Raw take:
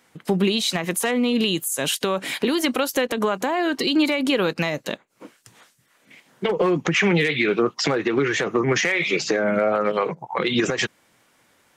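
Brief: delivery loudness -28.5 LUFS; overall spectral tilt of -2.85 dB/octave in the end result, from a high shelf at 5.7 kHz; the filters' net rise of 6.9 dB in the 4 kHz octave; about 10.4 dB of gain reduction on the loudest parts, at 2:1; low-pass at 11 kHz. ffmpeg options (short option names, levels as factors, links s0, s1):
-af "lowpass=11000,equalizer=f=4000:t=o:g=6.5,highshelf=f=5700:g=7,acompressor=threshold=0.0282:ratio=2,volume=0.891"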